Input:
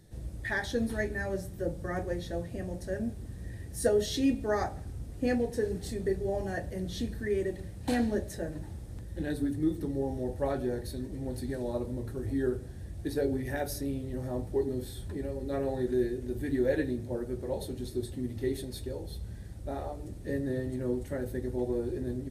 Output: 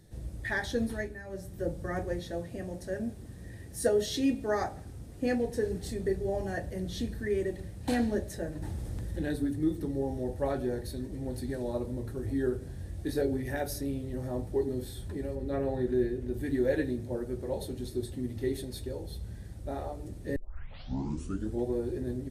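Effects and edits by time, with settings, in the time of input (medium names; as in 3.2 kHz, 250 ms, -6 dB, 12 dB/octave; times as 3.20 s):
0.83–1.62 s: dip -11.5 dB, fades 0.39 s
2.19–5.44 s: bass shelf 78 Hz -9.5 dB
8.62–9.36 s: level flattener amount 50%
12.59–13.22 s: doubling 23 ms -4 dB
15.35–16.34 s: tone controls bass +2 dB, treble -7 dB
20.36 s: tape start 1.28 s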